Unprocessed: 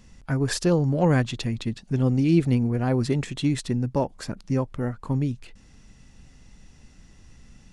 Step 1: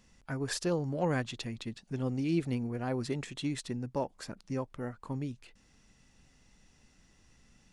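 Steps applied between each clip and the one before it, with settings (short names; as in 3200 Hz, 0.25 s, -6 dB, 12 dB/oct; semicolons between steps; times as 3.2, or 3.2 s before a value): low shelf 220 Hz -8.5 dB; gain -7 dB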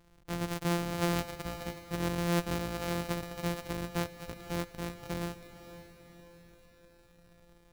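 sample sorter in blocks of 256 samples; diffused feedback echo 0.518 s, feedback 52%, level -13 dB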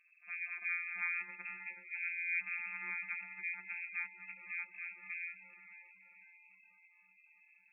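reverse echo 66 ms -16.5 dB; inverted band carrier 2600 Hz; spectral gate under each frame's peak -15 dB strong; gain -6.5 dB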